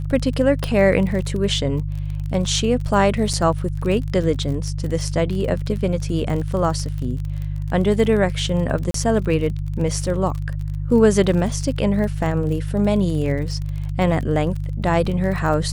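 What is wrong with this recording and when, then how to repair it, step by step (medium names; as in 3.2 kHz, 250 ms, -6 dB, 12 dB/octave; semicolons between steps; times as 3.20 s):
crackle 37 per s -27 dBFS
hum 50 Hz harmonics 3 -25 dBFS
0.64 s: pop -10 dBFS
3.33–3.34 s: dropout 6.1 ms
8.91–8.94 s: dropout 33 ms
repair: de-click; de-hum 50 Hz, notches 3; interpolate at 3.33 s, 6.1 ms; interpolate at 8.91 s, 33 ms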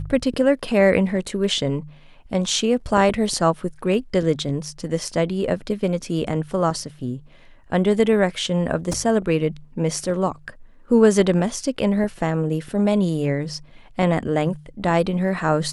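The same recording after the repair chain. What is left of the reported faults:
nothing left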